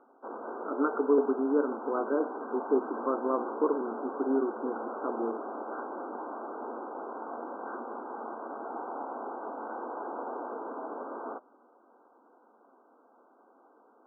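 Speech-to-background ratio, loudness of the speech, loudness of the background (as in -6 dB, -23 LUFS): 8.0 dB, -31.0 LUFS, -39.0 LUFS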